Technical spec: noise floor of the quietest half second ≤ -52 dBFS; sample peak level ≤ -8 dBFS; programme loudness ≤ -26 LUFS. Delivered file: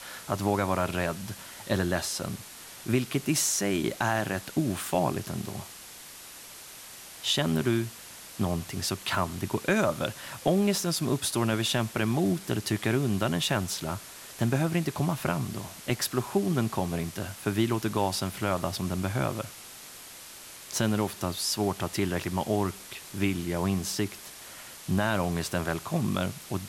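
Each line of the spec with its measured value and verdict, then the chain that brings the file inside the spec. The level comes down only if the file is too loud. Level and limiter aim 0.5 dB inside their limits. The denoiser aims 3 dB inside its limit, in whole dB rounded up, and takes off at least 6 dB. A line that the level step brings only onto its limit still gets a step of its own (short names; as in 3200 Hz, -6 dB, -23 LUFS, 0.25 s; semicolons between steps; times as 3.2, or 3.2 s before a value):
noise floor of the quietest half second -46 dBFS: fail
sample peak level -12.0 dBFS: OK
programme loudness -29.0 LUFS: OK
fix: denoiser 9 dB, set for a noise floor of -46 dBFS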